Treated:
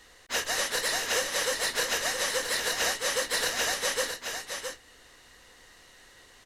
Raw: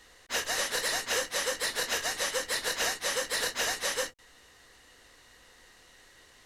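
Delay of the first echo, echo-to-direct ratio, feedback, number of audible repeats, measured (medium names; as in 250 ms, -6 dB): 666 ms, -6.5 dB, no regular repeats, 1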